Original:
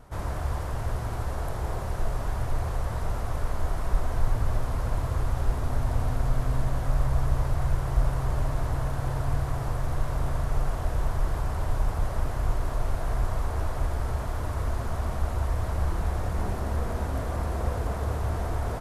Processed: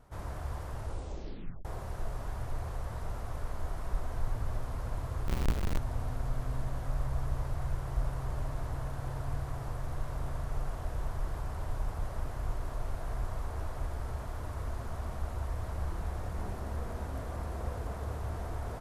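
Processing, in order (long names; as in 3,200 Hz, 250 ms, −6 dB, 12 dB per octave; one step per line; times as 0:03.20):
0:00.78: tape stop 0.87 s
0:05.28–0:05.78: each half-wave held at its own peak
level −8.5 dB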